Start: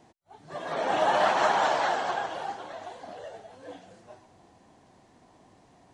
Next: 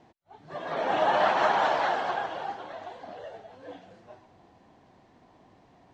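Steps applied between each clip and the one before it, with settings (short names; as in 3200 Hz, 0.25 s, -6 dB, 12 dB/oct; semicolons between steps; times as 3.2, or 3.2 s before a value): LPF 4200 Hz 12 dB/oct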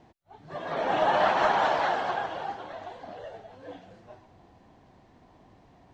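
low shelf 92 Hz +10.5 dB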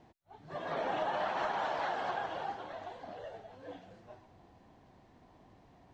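compressor 6:1, threshold -27 dBFS, peak gain reduction 8.5 dB; gain -4 dB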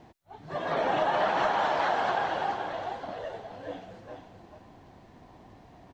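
echo 0.433 s -8 dB; gain +7.5 dB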